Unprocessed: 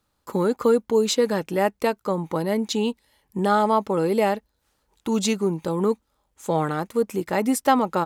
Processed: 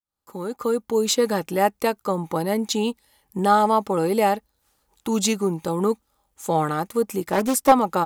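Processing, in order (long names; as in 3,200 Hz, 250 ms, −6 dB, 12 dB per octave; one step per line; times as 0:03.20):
fade in at the beginning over 1.18 s
high-shelf EQ 7,100 Hz +9 dB
hollow resonant body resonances 810/1,200 Hz, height 6 dB
0:07.31–0:07.72: highs frequency-modulated by the lows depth 0.53 ms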